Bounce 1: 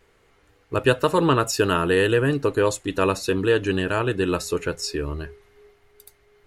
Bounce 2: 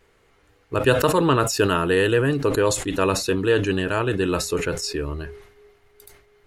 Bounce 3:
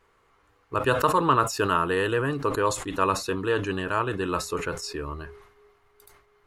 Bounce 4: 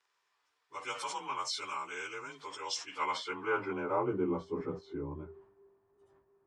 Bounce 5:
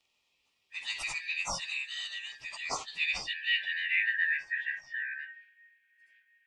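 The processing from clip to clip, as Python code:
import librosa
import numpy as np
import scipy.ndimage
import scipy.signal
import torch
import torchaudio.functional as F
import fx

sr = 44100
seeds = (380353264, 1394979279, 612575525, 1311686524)

y1 = fx.sustainer(x, sr, db_per_s=80.0)
y2 = fx.peak_eq(y1, sr, hz=1100.0, db=11.0, octaves=0.75)
y2 = y2 * librosa.db_to_amplitude(-7.0)
y3 = fx.partial_stretch(y2, sr, pct=92)
y3 = fx.filter_sweep_bandpass(y3, sr, from_hz=4800.0, to_hz=250.0, start_s=2.76, end_s=4.34, q=0.96)
y4 = fx.band_shuffle(y3, sr, order='4123')
y4 = y4 * librosa.db_to_amplitude(2.5)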